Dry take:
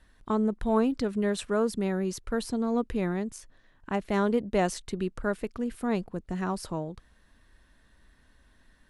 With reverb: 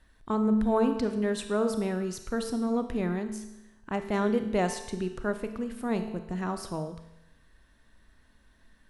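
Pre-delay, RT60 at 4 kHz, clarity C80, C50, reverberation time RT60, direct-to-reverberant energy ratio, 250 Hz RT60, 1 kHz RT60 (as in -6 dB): 27 ms, 0.90 s, 11.0 dB, 8.5 dB, 0.95 s, 7.5 dB, 0.95 s, 0.95 s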